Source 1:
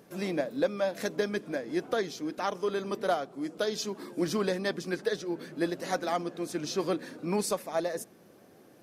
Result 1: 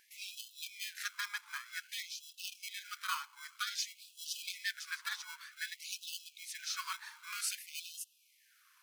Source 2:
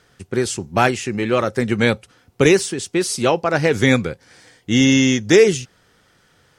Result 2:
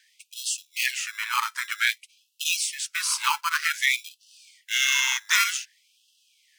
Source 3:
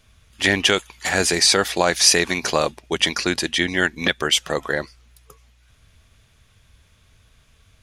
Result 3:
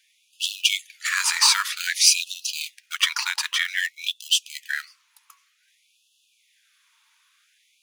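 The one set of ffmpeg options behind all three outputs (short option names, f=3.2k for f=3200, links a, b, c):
-filter_complex "[0:a]bandreject=f=540:w=14,asplit=2[a][b];[b]acrusher=samples=24:mix=1:aa=0.000001,volume=-5.5dB[c];[a][c]amix=inputs=2:normalize=0,afftfilt=real='re*gte(b*sr/1024,840*pow(2600/840,0.5+0.5*sin(2*PI*0.53*pts/sr)))':imag='im*gte(b*sr/1024,840*pow(2600/840,0.5+0.5*sin(2*PI*0.53*pts/sr)))':win_size=1024:overlap=0.75,volume=-1.5dB"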